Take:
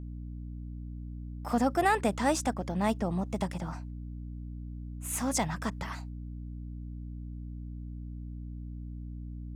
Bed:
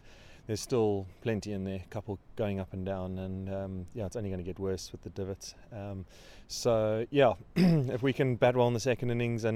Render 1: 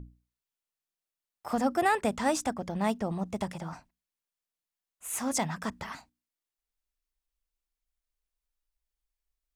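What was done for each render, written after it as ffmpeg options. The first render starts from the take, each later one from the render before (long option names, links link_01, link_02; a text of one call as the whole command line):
ffmpeg -i in.wav -af "bandreject=frequency=60:width_type=h:width=6,bandreject=frequency=120:width_type=h:width=6,bandreject=frequency=180:width_type=h:width=6,bandreject=frequency=240:width_type=h:width=6,bandreject=frequency=300:width_type=h:width=6" out.wav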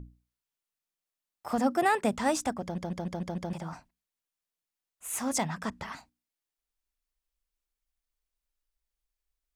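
ffmpeg -i in.wav -filter_complex "[0:a]asettb=1/sr,asplit=3[link_01][link_02][link_03];[link_01]atrim=end=1.584[link_04];[link_02]atrim=start=1.58:end=2.13,asetpts=PTS-STARTPTS,afade=type=in:duration=0.004:curve=qsin,afade=type=out:start_time=0.546:duration=0.004:curve=qsin,lowshelf=frequency=110:width_type=q:width=1.5:gain=-10.5[link_05];[link_03]atrim=start=2.126[link_06];[link_04][link_05]acrossfade=duration=0.004:curve1=hsin:curve2=qsin[link_07];[link_07][link_06]acrossfade=duration=0.004:curve1=qsin:curve2=hsin,asettb=1/sr,asplit=3[link_08][link_09][link_10];[link_08]atrim=end=5.424[link_11];[link_09]atrim=start=5.42:end=5.97,asetpts=PTS-STARTPTS,afade=type=in:duration=0.004:curve=qsin,afade=type=out:start_time=0.546:duration=0.004:curve=qsin,highshelf=frequency=11000:gain=-7.5[link_12];[link_10]atrim=start=5.966[link_13];[link_11][link_12]acrossfade=duration=0.004:curve1=hsin:curve2=qsin[link_14];[link_14][link_13]acrossfade=duration=0.004:curve1=qsin:curve2=hsin,asplit=7[link_15][link_16][link_17][link_18][link_19][link_20][link_21];[link_15]atrim=end=2.782[link_22];[link_16]atrim=start=2.628:end=2.782[link_23];[link_17]atrim=start=2.628:end=2.782[link_24];[link_18]atrim=start=2.628:end=2.782[link_25];[link_19]atrim=start=2.628:end=2.782[link_26];[link_20]atrim=start=2.628:end=2.782[link_27];[link_21]atrim=start=3.528[link_28];[link_22][link_23]acrossfade=duration=0.004:curve1=hsin:curve2=hsin[link_29];[link_29][link_24]acrossfade=duration=0.004:curve1=hsin:curve2=hsin[link_30];[link_30][link_25]acrossfade=duration=0.004:curve1=hsin:curve2=hsin[link_31];[link_31][link_26]acrossfade=duration=0.004:curve1=hsin:curve2=hsin[link_32];[link_32][link_27]acrossfade=duration=0.004:curve1=hsin:curve2=hsin[link_33];[link_33][link_28]acrossfade=duration=0.004:curve1=hsin:curve2=hsin" out.wav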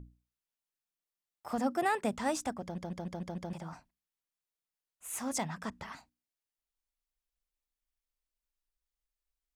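ffmpeg -i in.wav -af "volume=-5dB" out.wav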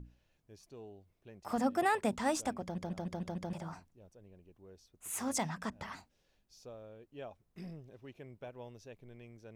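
ffmpeg -i in.wav -i bed.wav -filter_complex "[1:a]volume=-22.5dB[link_01];[0:a][link_01]amix=inputs=2:normalize=0" out.wav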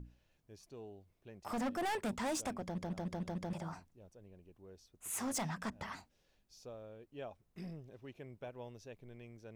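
ffmpeg -i in.wav -af "volume=33.5dB,asoftclip=hard,volume=-33.5dB" out.wav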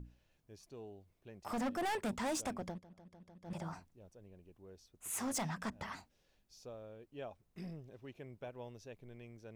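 ffmpeg -i in.wav -filter_complex "[0:a]asplit=3[link_01][link_02][link_03];[link_01]atrim=end=2.81,asetpts=PTS-STARTPTS,afade=type=out:start_time=2.68:duration=0.13:silence=0.11885[link_04];[link_02]atrim=start=2.81:end=3.43,asetpts=PTS-STARTPTS,volume=-18.5dB[link_05];[link_03]atrim=start=3.43,asetpts=PTS-STARTPTS,afade=type=in:duration=0.13:silence=0.11885[link_06];[link_04][link_05][link_06]concat=n=3:v=0:a=1" out.wav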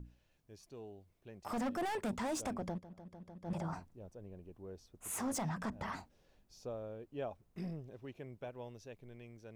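ffmpeg -i in.wav -filter_complex "[0:a]acrossover=split=1400[link_01][link_02];[link_01]dynaudnorm=framelen=280:gausssize=17:maxgain=7dB[link_03];[link_03][link_02]amix=inputs=2:normalize=0,alimiter=level_in=7.5dB:limit=-24dB:level=0:latency=1:release=22,volume=-7.5dB" out.wav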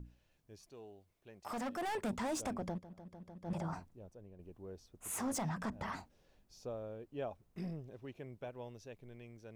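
ffmpeg -i in.wav -filter_complex "[0:a]asettb=1/sr,asplit=3[link_01][link_02][link_03];[link_01]atrim=end=0.704[link_04];[link_02]atrim=start=0.7:end=1.87,asetpts=PTS-STARTPTS,afade=type=in:duration=0.004:curve=qsin,afade=type=out:start_time=1.166:duration=0.004:curve=qsin,lowshelf=frequency=360:gain=-7[link_05];[link_03]atrim=start=1.866[link_06];[link_04][link_05]acrossfade=duration=0.004:curve1=hsin:curve2=qsin[link_07];[link_07][link_06]acrossfade=duration=0.004:curve1=qsin:curve2=hsin,asplit=2[link_08][link_09];[link_08]atrim=end=4.39,asetpts=PTS-STARTPTS,afade=type=out:start_time=3.82:duration=0.57:silence=0.473151[link_10];[link_09]atrim=start=4.39,asetpts=PTS-STARTPTS,afade=type=in:duration=0.004:curve=hsin:silence=0.473151[link_11];[link_10][link_11]concat=n=2:v=0:a=1" out.wav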